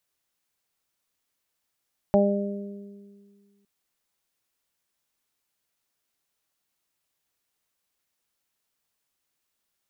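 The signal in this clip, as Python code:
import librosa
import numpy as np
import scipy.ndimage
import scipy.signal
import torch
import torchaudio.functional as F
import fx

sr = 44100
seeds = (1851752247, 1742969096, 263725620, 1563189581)

y = fx.additive(sr, length_s=1.51, hz=201.0, level_db=-19.0, upper_db=(-4.0, 2.5, -5.5), decay_s=1.95, upper_decays_s=(1.86, 1.04, 0.37))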